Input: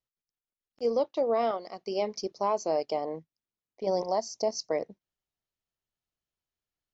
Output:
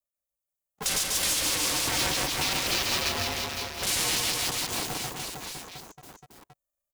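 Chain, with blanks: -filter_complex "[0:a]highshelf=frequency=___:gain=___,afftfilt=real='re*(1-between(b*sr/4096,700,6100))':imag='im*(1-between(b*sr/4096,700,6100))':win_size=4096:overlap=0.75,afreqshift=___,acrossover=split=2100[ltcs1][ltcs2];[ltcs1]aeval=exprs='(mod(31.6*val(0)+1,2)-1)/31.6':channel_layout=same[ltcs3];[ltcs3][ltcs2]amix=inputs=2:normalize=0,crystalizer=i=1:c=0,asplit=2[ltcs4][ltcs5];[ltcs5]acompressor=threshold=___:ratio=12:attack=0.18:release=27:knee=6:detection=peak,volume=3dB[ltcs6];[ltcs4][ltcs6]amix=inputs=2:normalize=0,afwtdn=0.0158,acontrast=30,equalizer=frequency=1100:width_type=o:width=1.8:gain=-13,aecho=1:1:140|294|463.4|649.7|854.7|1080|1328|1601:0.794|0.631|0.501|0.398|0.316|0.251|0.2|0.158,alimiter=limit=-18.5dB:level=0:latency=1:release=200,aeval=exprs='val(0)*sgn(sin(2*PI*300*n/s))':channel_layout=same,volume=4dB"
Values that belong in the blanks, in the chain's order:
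2200, -3, 240, -42dB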